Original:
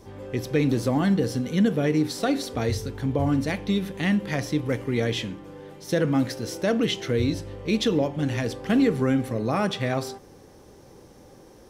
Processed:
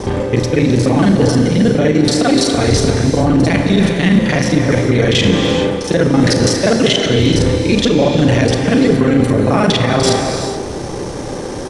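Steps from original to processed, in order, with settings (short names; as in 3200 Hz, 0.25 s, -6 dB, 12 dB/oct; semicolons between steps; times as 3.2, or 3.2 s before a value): local time reversal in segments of 33 ms; reverse; compressor 16:1, threshold -34 dBFS, peak gain reduction 18 dB; reverse; downsampling 22050 Hz; speakerphone echo 0.3 s, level -11 dB; non-linear reverb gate 0.46 s flat, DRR 4.5 dB; maximiser +26.5 dB; gain -1 dB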